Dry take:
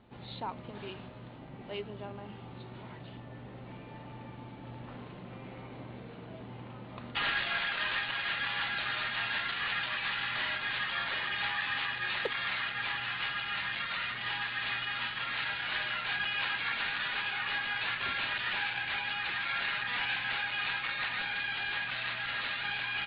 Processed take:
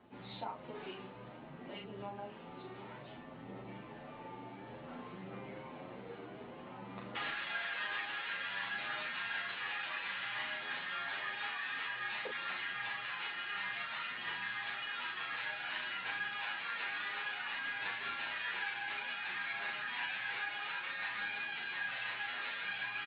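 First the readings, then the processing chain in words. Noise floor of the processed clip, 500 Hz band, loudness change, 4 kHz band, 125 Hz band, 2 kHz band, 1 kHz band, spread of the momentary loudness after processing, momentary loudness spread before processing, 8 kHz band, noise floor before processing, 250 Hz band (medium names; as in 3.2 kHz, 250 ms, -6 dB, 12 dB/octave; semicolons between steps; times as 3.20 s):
-51 dBFS, -3.5 dB, -7.0 dB, -8.0 dB, -9.5 dB, -5.5 dB, -5.0 dB, 12 LU, 15 LU, no reading, -47 dBFS, -4.0 dB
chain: three-band isolator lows -14 dB, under 170 Hz, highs -14 dB, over 3.6 kHz; compression 2:1, threshold -41 dBFS, peak gain reduction 7.5 dB; phaser 0.56 Hz, delay 2.8 ms, feedback 26%; doubling 36 ms -4.5 dB; endless flanger 8.9 ms +1.2 Hz; trim +1.5 dB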